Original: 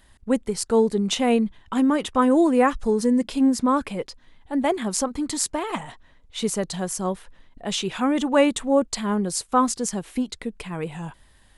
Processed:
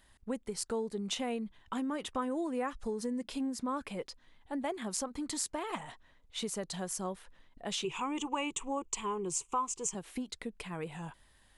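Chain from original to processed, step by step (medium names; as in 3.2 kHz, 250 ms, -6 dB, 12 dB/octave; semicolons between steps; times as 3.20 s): 7.84–9.95 s: rippled EQ curve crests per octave 0.71, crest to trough 16 dB; compression 3:1, threshold -26 dBFS, peak gain reduction 12 dB; bass shelf 340 Hz -4 dB; trim -6.5 dB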